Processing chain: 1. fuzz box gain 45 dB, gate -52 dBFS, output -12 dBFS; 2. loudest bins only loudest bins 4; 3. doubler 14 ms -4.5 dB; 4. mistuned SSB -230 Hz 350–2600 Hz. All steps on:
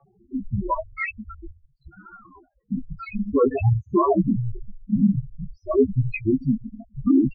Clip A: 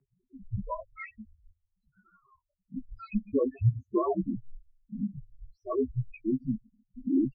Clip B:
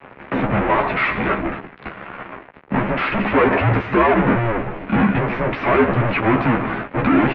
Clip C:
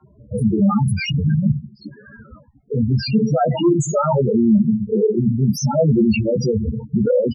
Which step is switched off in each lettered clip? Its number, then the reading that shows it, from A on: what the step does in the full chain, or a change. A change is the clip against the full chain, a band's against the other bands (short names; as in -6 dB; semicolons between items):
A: 1, crest factor change +2.0 dB; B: 2, 2 kHz band +11.5 dB; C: 4, 2 kHz band -4.0 dB